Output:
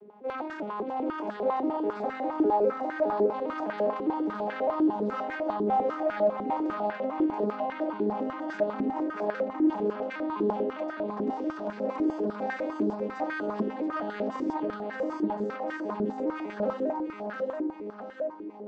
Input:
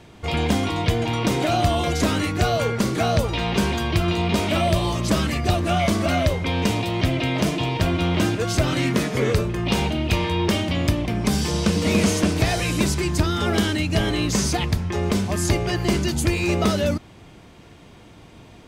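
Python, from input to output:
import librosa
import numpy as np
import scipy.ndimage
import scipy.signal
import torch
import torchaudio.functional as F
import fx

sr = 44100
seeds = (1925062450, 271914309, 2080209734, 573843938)

p1 = fx.vocoder_arp(x, sr, chord='major triad', root=56, every_ms=203)
p2 = fx.rider(p1, sr, range_db=4, speed_s=0.5)
p3 = p1 + F.gain(torch.from_numpy(p2), 1.0).numpy()
p4 = 10.0 ** (-14.5 / 20.0) * np.tanh(p3 / 10.0 ** (-14.5 / 20.0))
p5 = p4 + fx.echo_feedback(p4, sr, ms=679, feedback_pct=54, wet_db=-3.5, dry=0)
y = fx.filter_held_bandpass(p5, sr, hz=10.0, low_hz=380.0, high_hz=1600.0)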